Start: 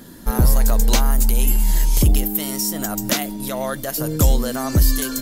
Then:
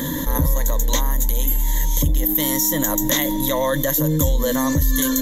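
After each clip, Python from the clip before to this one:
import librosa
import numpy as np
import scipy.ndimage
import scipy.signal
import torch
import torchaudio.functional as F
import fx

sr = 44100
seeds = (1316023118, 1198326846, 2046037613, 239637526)

y = fx.ripple_eq(x, sr, per_octave=1.1, db=16)
y = fx.env_flatten(y, sr, amount_pct=70)
y = y * 10.0 ** (-9.0 / 20.0)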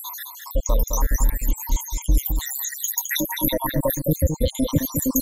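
y = fx.spec_dropout(x, sr, seeds[0], share_pct=81)
y = y + 10.0 ** (-6.0 / 20.0) * np.pad(y, (int(212 * sr / 1000.0), 0))[:len(y)]
y = y * 10.0 ** (2.0 / 20.0)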